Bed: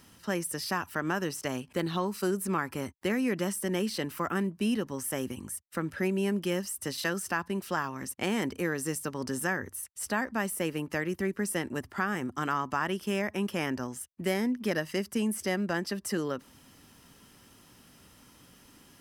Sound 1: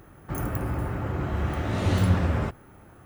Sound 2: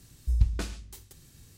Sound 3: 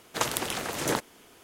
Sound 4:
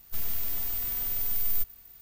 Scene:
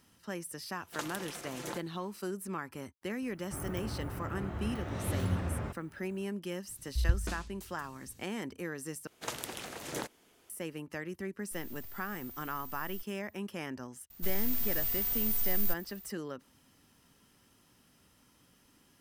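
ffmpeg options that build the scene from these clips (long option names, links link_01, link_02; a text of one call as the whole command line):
ffmpeg -i bed.wav -i cue0.wav -i cue1.wav -i cue2.wav -i cue3.wav -filter_complex "[3:a]asplit=2[link_01][link_02];[4:a]asplit=2[link_03][link_04];[0:a]volume=-8.5dB[link_05];[link_01]aecho=1:1:5.8:0.54[link_06];[link_02]equalizer=frequency=1100:width_type=o:width=0.77:gain=-2[link_07];[link_04]asoftclip=type=tanh:threshold=-18dB[link_08];[link_05]asplit=2[link_09][link_10];[link_09]atrim=end=9.074[link_11];[link_07]atrim=end=1.43,asetpts=PTS-STARTPTS,volume=-10dB[link_12];[link_10]atrim=start=10.496[link_13];[link_06]atrim=end=1.43,asetpts=PTS-STARTPTS,volume=-14dB,afade=type=in:duration=0.004:curve=hsin,afade=type=out:start_time=1.426:duration=0.004:curve=hsin,adelay=780[link_14];[1:a]atrim=end=3.05,asetpts=PTS-STARTPTS,volume=-10.5dB,afade=type=in:duration=0.004:curve=hsin,afade=type=out:start_time=3.046:duration=0.004:curve=hsin,adelay=3220[link_15];[2:a]atrim=end=1.57,asetpts=PTS-STARTPTS,volume=-4.5dB,afade=type=in:duration=0.004:curve=hsin,afade=type=out:start_time=1.566:duration=0.004:curve=hsin,adelay=6680[link_16];[link_03]atrim=end=2.01,asetpts=PTS-STARTPTS,volume=-17.5dB,afade=type=in:duration=0.004:curve=hsin,afade=type=out:start_time=2.006:duration=0.004:curve=hsin,adelay=11390[link_17];[link_08]atrim=end=2.01,asetpts=PTS-STARTPTS,volume=-1dB,afade=type=in:duration=0.004:curve=hsin,afade=type=out:start_time=2.006:duration=0.004:curve=hsin,adelay=14100[link_18];[link_11][link_12]acrossfade=duration=0.004:curve1=hsin:curve2=hsin[link_19];[link_19][link_13]acrossfade=duration=0.004:curve1=hsin:curve2=hsin[link_20];[link_20][link_14][link_15][link_16][link_17][link_18]amix=inputs=6:normalize=0" out.wav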